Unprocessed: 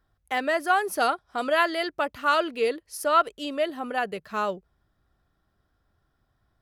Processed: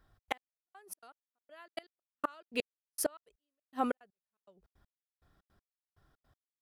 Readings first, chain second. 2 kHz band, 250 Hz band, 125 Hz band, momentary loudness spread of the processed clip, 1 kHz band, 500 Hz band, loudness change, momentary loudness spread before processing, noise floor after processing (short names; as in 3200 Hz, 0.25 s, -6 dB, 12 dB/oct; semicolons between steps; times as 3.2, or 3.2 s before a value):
-19.0 dB, -9.5 dB, n/a, 15 LU, -17.5 dB, -16.0 dB, -14.0 dB, 8 LU, under -85 dBFS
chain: flipped gate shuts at -19 dBFS, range -34 dB; step gate "xx.x...." 161 bpm -60 dB; gain +2 dB